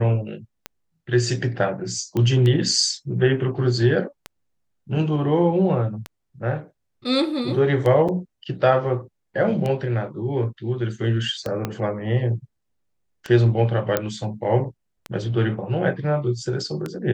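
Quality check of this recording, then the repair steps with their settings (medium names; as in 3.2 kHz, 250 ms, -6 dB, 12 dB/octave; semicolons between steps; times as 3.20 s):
tick 33 1/3 rpm -14 dBFS
2.17 s: pop -13 dBFS
8.08–8.09 s: dropout 6.1 ms
11.65 s: pop -11 dBFS
13.97 s: pop -6 dBFS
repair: de-click; interpolate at 8.08 s, 6.1 ms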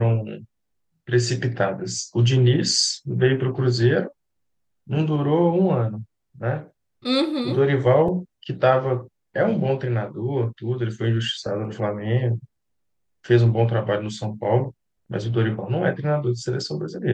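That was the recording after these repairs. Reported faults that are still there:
11.65 s: pop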